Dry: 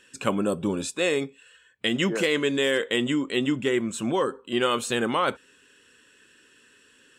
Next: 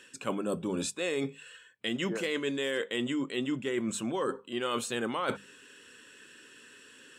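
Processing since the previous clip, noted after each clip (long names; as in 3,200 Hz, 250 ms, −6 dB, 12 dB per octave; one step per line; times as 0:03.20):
high-pass filter 97 Hz
mains-hum notches 50/100/150/200 Hz
reversed playback
downward compressor 6 to 1, threshold −33 dBFS, peak gain reduction 14 dB
reversed playback
level +3.5 dB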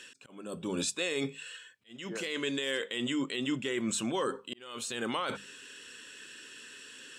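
parametric band 4,800 Hz +8 dB 2.4 octaves
brickwall limiter −22 dBFS, peak gain reduction 9.5 dB
volume swells 556 ms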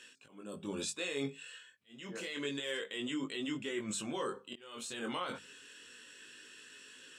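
chorus effect 0.29 Hz, delay 19 ms, depth 3.1 ms
level −2.5 dB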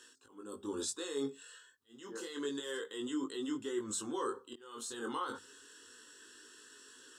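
phaser with its sweep stopped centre 630 Hz, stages 6
level +2.5 dB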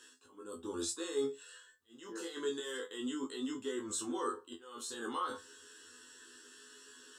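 tuned comb filter 84 Hz, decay 0.16 s, harmonics all, mix 100%
level +6.5 dB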